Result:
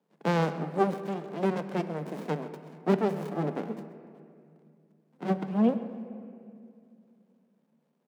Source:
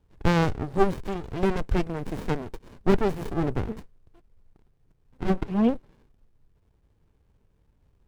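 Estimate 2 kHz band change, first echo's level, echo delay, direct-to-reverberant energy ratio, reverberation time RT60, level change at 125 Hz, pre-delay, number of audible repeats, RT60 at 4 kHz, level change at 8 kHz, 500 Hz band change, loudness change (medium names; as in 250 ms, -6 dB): -4.5 dB, -17.0 dB, 131 ms, 9.5 dB, 2.5 s, -5.0 dB, 7 ms, 1, 1.6 s, no reading, -2.5 dB, -3.0 dB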